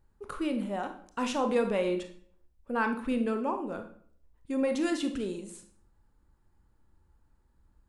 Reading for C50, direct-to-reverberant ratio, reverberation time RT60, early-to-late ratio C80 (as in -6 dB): 9.5 dB, 6.0 dB, 0.55 s, 14.0 dB